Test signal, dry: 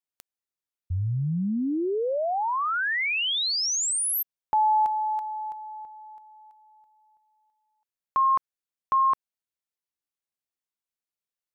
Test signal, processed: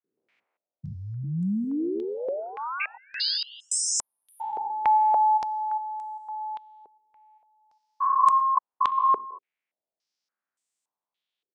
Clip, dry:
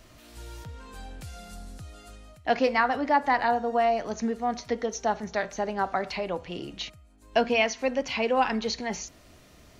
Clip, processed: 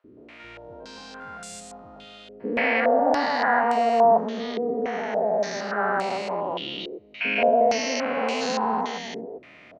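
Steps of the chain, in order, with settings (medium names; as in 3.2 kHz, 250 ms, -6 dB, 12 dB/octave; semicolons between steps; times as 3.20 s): spectrogram pixelated in time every 400 ms; high-pass 220 Hz 12 dB/octave; three bands offset in time highs, lows, mids 40/170 ms, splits 380/1200 Hz; step-sequenced low-pass 3.5 Hz 420–8000 Hz; trim +7.5 dB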